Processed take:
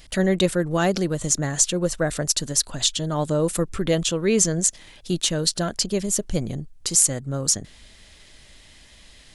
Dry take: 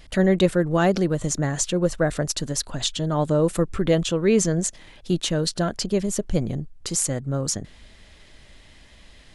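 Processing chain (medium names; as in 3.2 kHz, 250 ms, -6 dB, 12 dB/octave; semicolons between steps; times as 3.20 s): treble shelf 3.6 kHz +10.5 dB; trim -2 dB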